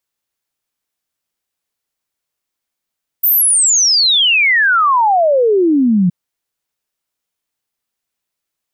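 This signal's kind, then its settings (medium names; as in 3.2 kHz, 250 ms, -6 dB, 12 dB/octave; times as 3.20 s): log sweep 15 kHz -> 170 Hz 2.87 s -8.5 dBFS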